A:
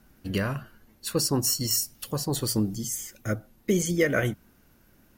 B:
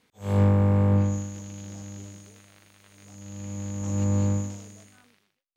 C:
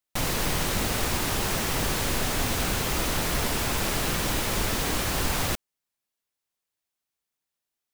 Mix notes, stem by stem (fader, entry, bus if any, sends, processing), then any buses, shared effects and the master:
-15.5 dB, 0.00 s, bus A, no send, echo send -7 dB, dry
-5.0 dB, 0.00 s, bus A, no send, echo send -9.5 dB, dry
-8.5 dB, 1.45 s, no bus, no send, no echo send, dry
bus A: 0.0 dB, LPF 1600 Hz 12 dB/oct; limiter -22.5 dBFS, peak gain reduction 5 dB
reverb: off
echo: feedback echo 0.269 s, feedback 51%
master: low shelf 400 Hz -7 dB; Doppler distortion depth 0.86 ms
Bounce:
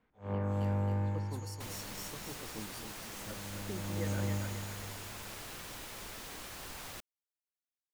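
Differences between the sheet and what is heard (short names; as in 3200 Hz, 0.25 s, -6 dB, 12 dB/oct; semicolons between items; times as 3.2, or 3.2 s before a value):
stem C -8.5 dB -> -17.0 dB; master: missing Doppler distortion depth 0.86 ms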